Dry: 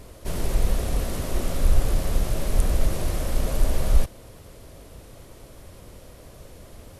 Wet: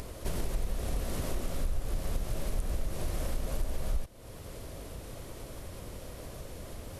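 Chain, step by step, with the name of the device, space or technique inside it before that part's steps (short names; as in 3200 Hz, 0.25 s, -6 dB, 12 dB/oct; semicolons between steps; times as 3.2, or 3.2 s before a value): upward and downward compression (upward compressor, threshold -37 dBFS; compressor 4:1, threshold -29 dBFS, peak gain reduction 16 dB)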